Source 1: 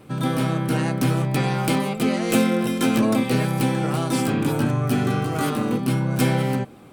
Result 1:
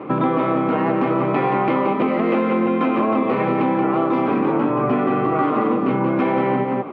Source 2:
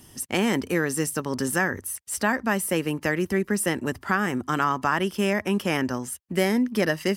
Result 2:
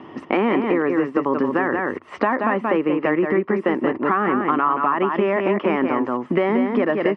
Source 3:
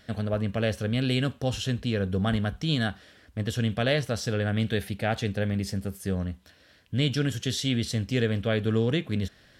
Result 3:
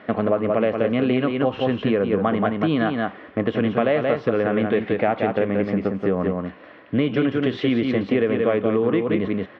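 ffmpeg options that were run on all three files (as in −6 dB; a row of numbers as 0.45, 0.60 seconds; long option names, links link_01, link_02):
-filter_complex "[0:a]apsyclip=17dB,highpass=290,equalizer=frequency=320:width_type=q:width=4:gain=4,equalizer=frequency=1100:width_type=q:width=4:gain=6,equalizer=frequency=1600:width_type=q:width=4:gain=-9,lowpass=frequency=2100:width=0.5412,lowpass=frequency=2100:width=1.3066,asplit=2[link_01][link_02];[link_02]aecho=0:1:178:0.531[link_03];[link_01][link_03]amix=inputs=2:normalize=0,acompressor=threshold=-17dB:ratio=5"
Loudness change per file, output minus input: +2.5, +4.5, +6.0 LU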